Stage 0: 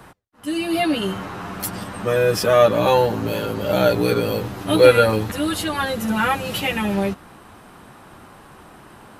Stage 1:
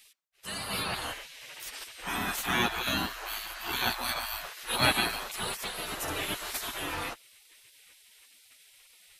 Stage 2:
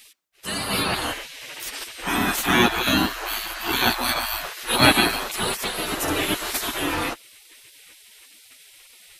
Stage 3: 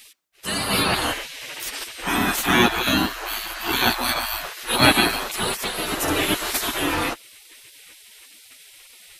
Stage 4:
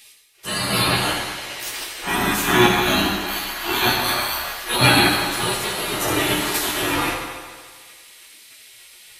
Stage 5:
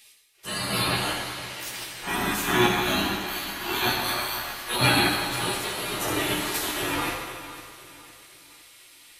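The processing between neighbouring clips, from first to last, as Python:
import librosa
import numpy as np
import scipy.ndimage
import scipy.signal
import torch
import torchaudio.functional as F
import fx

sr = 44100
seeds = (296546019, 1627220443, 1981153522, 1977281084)

y1 = fx.spec_gate(x, sr, threshold_db=-20, keep='weak')
y2 = fx.peak_eq(y1, sr, hz=300.0, db=6.5, octaves=0.98)
y2 = y2 * 10.0 ** (8.5 / 20.0)
y3 = fx.rider(y2, sr, range_db=5, speed_s=2.0)
y4 = fx.rev_fdn(y3, sr, rt60_s=1.7, lf_ratio=0.8, hf_ratio=0.85, size_ms=49.0, drr_db=-2.0)
y4 = y4 * 10.0 ** (-2.0 / 20.0)
y5 = fx.echo_feedback(y4, sr, ms=507, feedback_pct=42, wet_db=-15.0)
y5 = y5 * 10.0 ** (-6.0 / 20.0)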